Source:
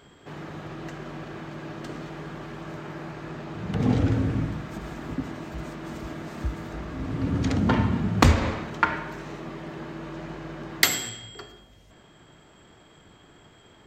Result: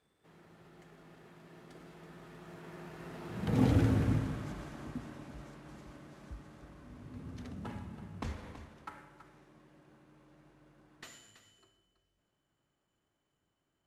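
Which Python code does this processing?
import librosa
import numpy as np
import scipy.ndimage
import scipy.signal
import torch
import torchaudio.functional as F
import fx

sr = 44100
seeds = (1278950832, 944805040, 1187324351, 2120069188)

y = fx.cvsd(x, sr, bps=64000)
y = fx.doppler_pass(y, sr, speed_mps=26, closest_m=13.0, pass_at_s=3.85)
y = y + 10.0 ** (-12.0 / 20.0) * np.pad(y, (int(328 * sr / 1000.0), 0))[:len(y)]
y = F.gain(torch.from_numpy(y), -4.0).numpy()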